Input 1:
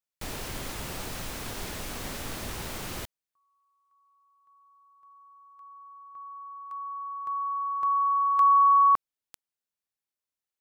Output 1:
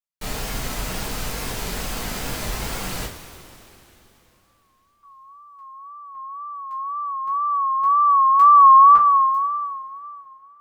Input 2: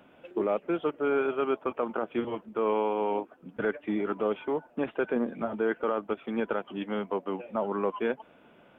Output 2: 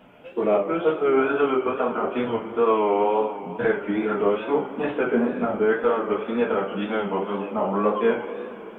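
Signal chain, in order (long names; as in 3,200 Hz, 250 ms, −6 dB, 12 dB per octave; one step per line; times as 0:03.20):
noise gate with hold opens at −52 dBFS, hold 196 ms, range −14 dB
coupled-rooms reverb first 0.28 s, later 3.4 s, from −18 dB, DRR −7 dB
tape wow and flutter 79 cents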